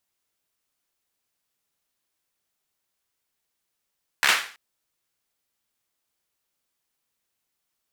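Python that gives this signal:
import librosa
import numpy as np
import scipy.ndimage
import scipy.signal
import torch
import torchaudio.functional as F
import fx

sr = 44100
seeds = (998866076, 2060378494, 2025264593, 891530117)

y = fx.drum_clap(sr, seeds[0], length_s=0.33, bursts=5, spacing_ms=14, hz=1800.0, decay_s=0.42)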